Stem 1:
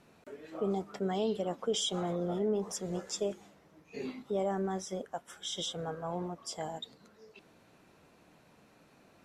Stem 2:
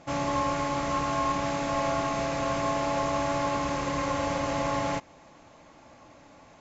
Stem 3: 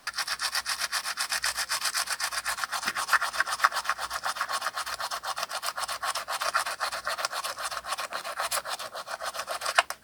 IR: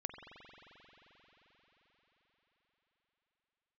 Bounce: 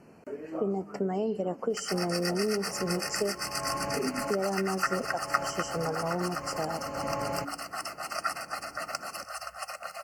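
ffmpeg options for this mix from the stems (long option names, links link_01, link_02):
-filter_complex "[0:a]volume=0.5dB,asplit=3[link_01][link_02][link_03];[link_02]volume=-18.5dB[link_04];[1:a]bandreject=frequency=47.36:width_type=h:width=4,bandreject=frequency=94.72:width_type=h:width=4,bandreject=frequency=142.08:width_type=h:width=4,bandreject=frequency=189.44:width_type=h:width=4,bandreject=frequency=236.8:width_type=h:width=4,bandreject=frequency=284.16:width_type=h:width=4,bandreject=frequency=331.52:width_type=h:width=4,bandreject=frequency=378.88:width_type=h:width=4,bandreject=frequency=426.24:width_type=h:width=4,bandreject=frequency=473.6:width_type=h:width=4,adelay=2450,volume=-9dB[link_05];[2:a]aecho=1:1:1.5:0.91,adelay=1700,volume=-9.5dB,asplit=2[link_06][link_07];[link_07]volume=-13.5dB[link_08];[link_03]apad=whole_len=399195[link_09];[link_05][link_09]sidechaincompress=threshold=-41dB:ratio=8:attack=12:release=535[link_10];[link_01][link_10]amix=inputs=2:normalize=0,equalizer=frequency=290:width=0.31:gain=8.5,acompressor=threshold=-27dB:ratio=5,volume=0dB[link_11];[3:a]atrim=start_sample=2205[link_12];[link_04][link_08]amix=inputs=2:normalize=0[link_13];[link_13][link_12]afir=irnorm=-1:irlink=0[link_14];[link_06][link_11][link_14]amix=inputs=3:normalize=0,asuperstop=centerf=3600:order=20:qfactor=3.2"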